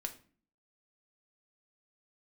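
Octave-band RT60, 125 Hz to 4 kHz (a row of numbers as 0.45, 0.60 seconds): 0.60, 0.70, 0.45, 0.40, 0.40, 0.30 seconds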